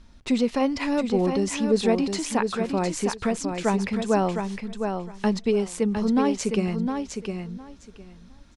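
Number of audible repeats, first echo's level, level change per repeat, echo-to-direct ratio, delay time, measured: 2, -6.0 dB, -15.5 dB, -6.0 dB, 0.709 s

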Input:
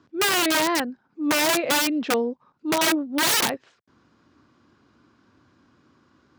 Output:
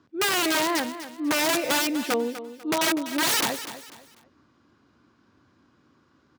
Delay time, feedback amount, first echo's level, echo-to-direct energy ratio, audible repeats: 0.247 s, 32%, -12.5 dB, -12.0 dB, 3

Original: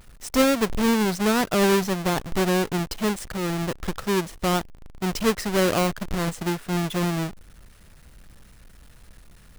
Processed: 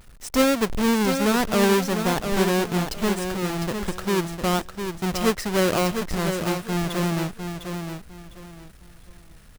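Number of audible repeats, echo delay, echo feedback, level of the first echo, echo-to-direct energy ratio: 3, 0.704 s, 26%, -7.0 dB, -6.5 dB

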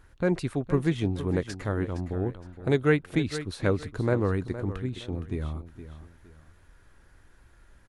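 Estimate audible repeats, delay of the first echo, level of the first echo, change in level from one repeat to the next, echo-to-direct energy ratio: 2, 0.465 s, -12.5 dB, -10.0 dB, -12.0 dB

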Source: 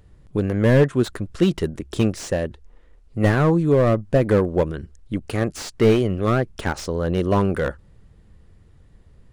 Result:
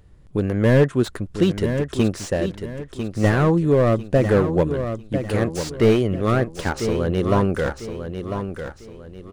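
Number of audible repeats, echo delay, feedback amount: 3, 0.998 s, 33%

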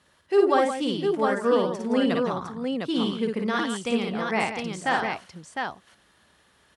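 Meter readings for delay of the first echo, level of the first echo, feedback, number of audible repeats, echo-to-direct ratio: 55 ms, -3.5 dB, no steady repeat, 3, -0.5 dB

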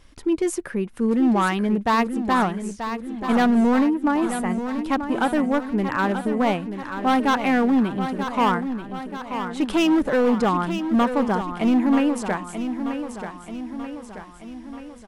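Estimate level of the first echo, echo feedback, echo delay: -9.0 dB, 55%, 0.934 s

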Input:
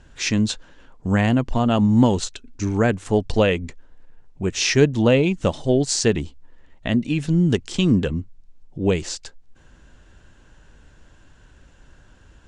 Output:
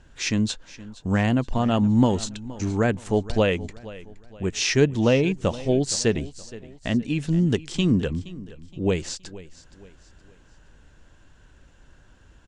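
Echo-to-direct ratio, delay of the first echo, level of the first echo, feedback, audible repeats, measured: -17.5 dB, 0.47 s, -18.0 dB, 39%, 3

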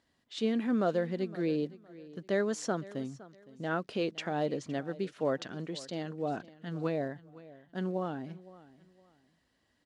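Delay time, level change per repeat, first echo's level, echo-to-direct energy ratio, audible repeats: 0.513 s, -11.0 dB, -19.0 dB, -18.5 dB, 2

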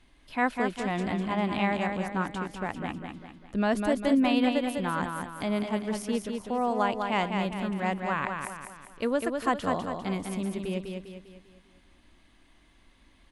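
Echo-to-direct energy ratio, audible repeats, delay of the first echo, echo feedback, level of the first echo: -4.0 dB, 5, 0.2 s, 45%, -5.0 dB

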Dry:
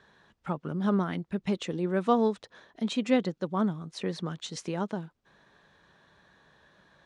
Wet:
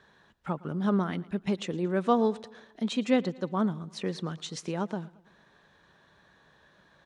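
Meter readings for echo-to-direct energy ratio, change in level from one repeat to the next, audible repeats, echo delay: -20.0 dB, -5.5 dB, 3, 0.113 s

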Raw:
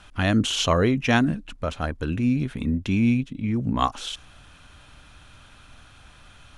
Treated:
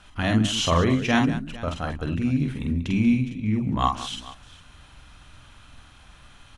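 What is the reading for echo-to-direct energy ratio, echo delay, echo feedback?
-2.5 dB, 47 ms, no steady repeat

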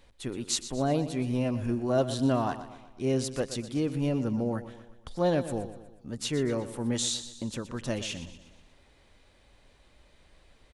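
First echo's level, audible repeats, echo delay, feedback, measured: -13.0 dB, 4, 0.121 s, 49%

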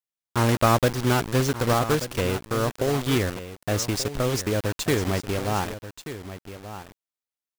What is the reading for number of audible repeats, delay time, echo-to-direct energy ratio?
1, 1.183 s, -12.5 dB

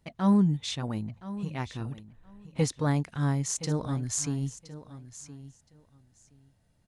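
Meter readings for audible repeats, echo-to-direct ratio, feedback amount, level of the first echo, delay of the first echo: 2, -15.0 dB, 16%, -15.0 dB, 1.019 s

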